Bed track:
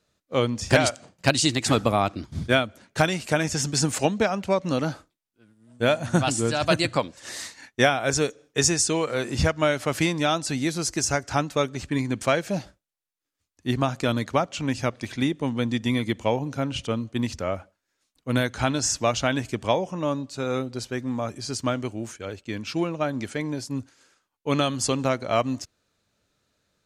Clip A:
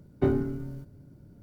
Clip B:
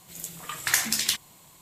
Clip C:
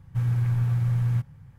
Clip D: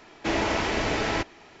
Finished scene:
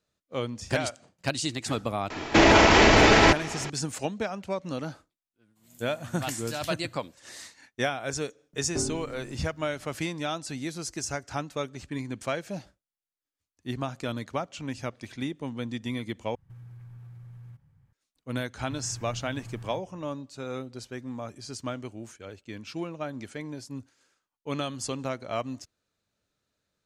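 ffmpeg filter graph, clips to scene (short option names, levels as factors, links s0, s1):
-filter_complex "[3:a]asplit=2[s0][s1];[0:a]volume=0.376[s2];[4:a]alimiter=level_in=11.9:limit=0.891:release=50:level=0:latency=1[s3];[1:a]acompressor=mode=upward:threshold=0.00794:ratio=2.5:attack=3.2:release=140:knee=2.83:detection=peak[s4];[s0]acompressor=threshold=0.0316:ratio=6:attack=3.2:release=140:knee=1:detection=peak[s5];[s1]asplit=2[s6][s7];[s7]adelay=37,volume=0.596[s8];[s6][s8]amix=inputs=2:normalize=0[s9];[s2]asplit=2[s10][s11];[s10]atrim=end=16.354[s12];[s5]atrim=end=1.58,asetpts=PTS-STARTPTS,volume=0.2[s13];[s11]atrim=start=17.926[s14];[s3]atrim=end=1.6,asetpts=PTS-STARTPTS,volume=0.447,afade=t=in:d=0.004:c=hsin,afade=t=out:st=1.596:d=0.004:c=hsin,adelay=2100[s15];[2:a]atrim=end=1.61,asetpts=PTS-STARTPTS,volume=0.141,afade=t=in:d=0.02,afade=t=out:st=1.59:d=0.02,adelay=5550[s16];[s4]atrim=end=1.42,asetpts=PTS-STARTPTS,volume=0.422,afade=t=in:d=0.004:c=hsin,afade=t=out:st=1.416:d=0.004:c=hsin,adelay=8530[s17];[s9]atrim=end=1.58,asetpts=PTS-STARTPTS,volume=0.224,afade=t=in:d=0.004:c=hsin,afade=t=out:st=1.576:d=0.004:c=hsin,adelay=18550[s18];[s12][s13]acrossfade=d=0.004:c1=hsin:c2=hsin[s19];[s19][s14]acrossfade=d=0.004:c1=hsin:c2=hsin[s20];[s20][s15][s16][s17][s18]amix=inputs=5:normalize=0"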